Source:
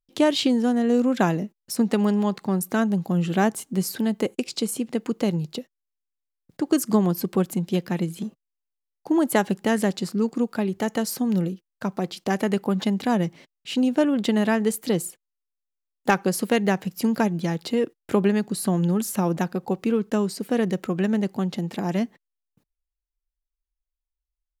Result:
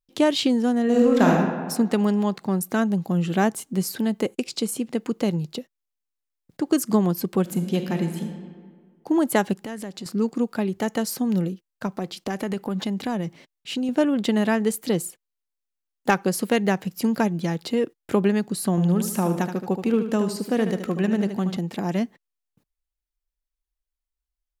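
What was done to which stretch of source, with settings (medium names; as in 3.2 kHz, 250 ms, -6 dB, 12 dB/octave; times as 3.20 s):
0.83–1.30 s: reverb throw, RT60 1.5 s, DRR -1.5 dB
7.41–8.24 s: reverb throw, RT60 1.8 s, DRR 5.5 dB
9.53–10.06 s: compression 4:1, threshold -32 dBFS
11.86–13.89 s: compression, threshold -22 dBFS
18.70–21.57 s: feedback delay 75 ms, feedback 46%, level -9 dB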